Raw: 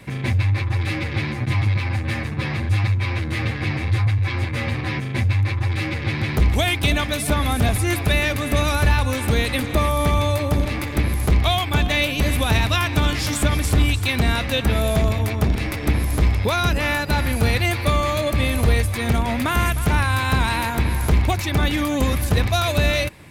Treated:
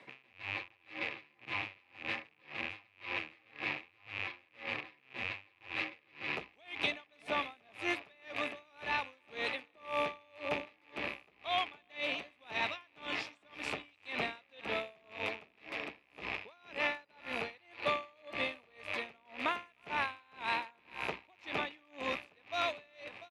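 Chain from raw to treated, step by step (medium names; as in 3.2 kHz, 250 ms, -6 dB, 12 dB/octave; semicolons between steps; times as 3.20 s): rattle on loud lows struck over -26 dBFS, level -14 dBFS; band-pass 450–3300 Hz; peaking EQ 1.5 kHz -5.5 dB 0.26 oct; delay 694 ms -15 dB; logarithmic tremolo 1.9 Hz, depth 33 dB; trim -7.5 dB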